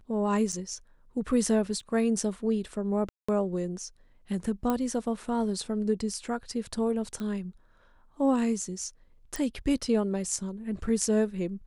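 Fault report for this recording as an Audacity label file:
0.520000	0.530000	gap 6.7 ms
1.800000	1.800000	gap 2.6 ms
3.090000	3.290000	gap 0.195 s
4.700000	4.700000	pop -15 dBFS
7.200000	7.200000	pop -24 dBFS
9.360000	9.360000	pop

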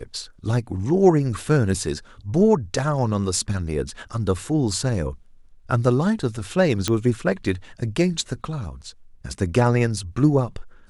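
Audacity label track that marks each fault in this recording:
6.880000	6.880000	pop -7 dBFS

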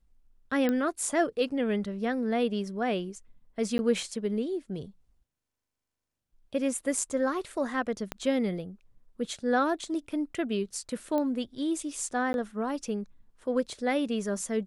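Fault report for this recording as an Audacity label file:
0.690000	0.690000	pop -16 dBFS
3.780000	3.790000	gap 10 ms
8.120000	8.120000	pop -17 dBFS
11.180000	11.180000	pop -19 dBFS
12.330000	12.340000	gap 11 ms

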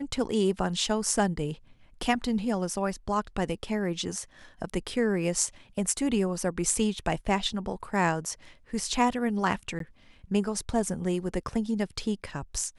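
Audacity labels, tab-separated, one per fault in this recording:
9.790000	9.800000	gap 13 ms

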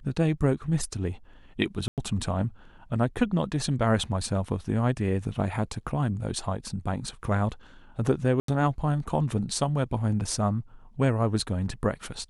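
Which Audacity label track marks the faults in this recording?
1.880000	1.980000	gap 98 ms
8.400000	8.480000	gap 83 ms

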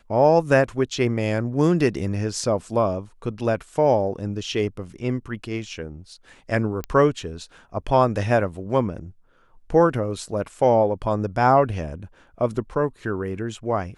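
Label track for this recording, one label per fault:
6.840000	6.840000	pop -15 dBFS

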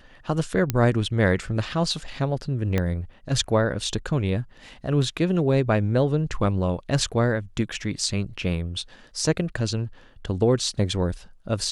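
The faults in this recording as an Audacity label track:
0.700000	0.700000	pop -8 dBFS
2.780000	2.780000	pop -11 dBFS

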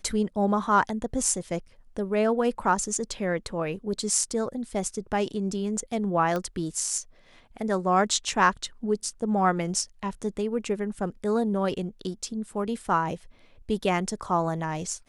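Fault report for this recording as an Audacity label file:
6.360000	6.360000	pop -17 dBFS

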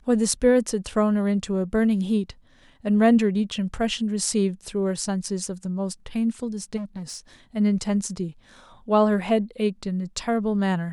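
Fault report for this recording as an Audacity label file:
6.760000	7.180000	clipped -29 dBFS

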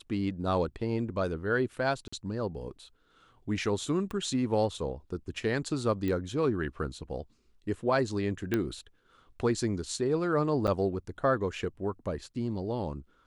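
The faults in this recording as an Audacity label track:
2.080000	2.120000	gap 45 ms
4.110000	4.110000	pop -25 dBFS
6.080000	6.080000	pop -21 dBFS
8.540000	8.540000	pop -15 dBFS
10.670000	10.680000	gap 7.9 ms

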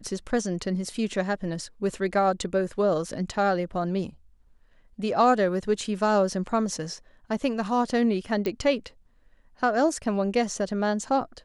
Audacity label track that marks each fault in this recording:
8.460000	8.460000	pop -15 dBFS

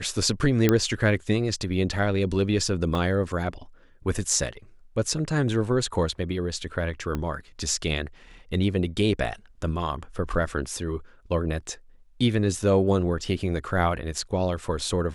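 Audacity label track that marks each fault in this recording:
0.690000	0.690000	pop -6 dBFS
2.950000	2.950000	gap 2.3 ms
7.150000	7.150000	pop -16 dBFS

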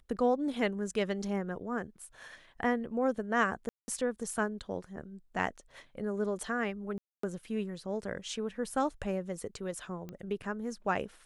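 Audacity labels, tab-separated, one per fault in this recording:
3.690000	3.880000	gap 0.19 s
6.980000	7.230000	gap 0.254 s
10.090000	10.090000	pop -29 dBFS

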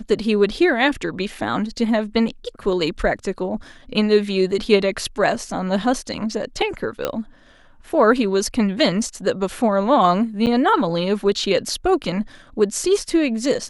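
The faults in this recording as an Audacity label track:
7.050000	7.050000	pop -7 dBFS
10.460000	10.470000	gap 9 ms

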